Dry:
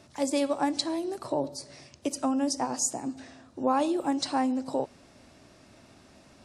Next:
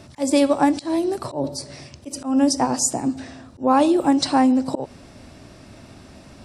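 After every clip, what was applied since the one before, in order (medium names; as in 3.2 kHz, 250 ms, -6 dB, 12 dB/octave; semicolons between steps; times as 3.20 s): bass shelf 190 Hz +8 dB; band-stop 6.6 kHz, Q 16; slow attack 154 ms; trim +8.5 dB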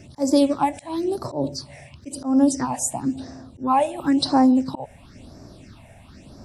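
phase shifter stages 6, 0.97 Hz, lowest notch 310–3000 Hz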